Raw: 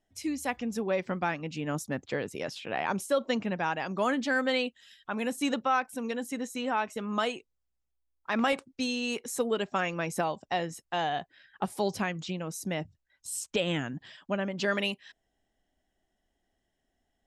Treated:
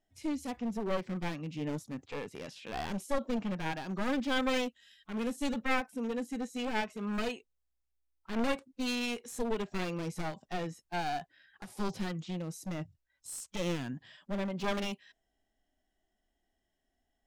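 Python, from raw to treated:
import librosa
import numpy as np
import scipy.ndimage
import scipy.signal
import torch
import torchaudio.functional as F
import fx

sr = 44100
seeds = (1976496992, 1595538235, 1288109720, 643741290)

y = np.minimum(x, 2.0 * 10.0 ** (-30.0 / 20.0) - x)
y = fx.hpss(y, sr, part='percussive', gain_db=-13)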